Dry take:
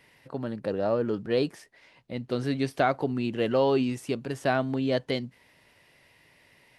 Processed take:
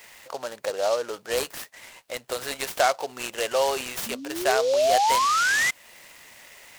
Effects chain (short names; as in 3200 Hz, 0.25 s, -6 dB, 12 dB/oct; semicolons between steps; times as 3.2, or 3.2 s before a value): RIAA curve recording; painted sound rise, 4.06–5.71, 220–2100 Hz -25 dBFS; in parallel at +3 dB: compressor, threshold -37 dBFS, peak gain reduction 17 dB; on the sum: resonant low shelf 390 Hz -13 dB, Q 1.5; noise-modulated delay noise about 4300 Hz, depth 0.043 ms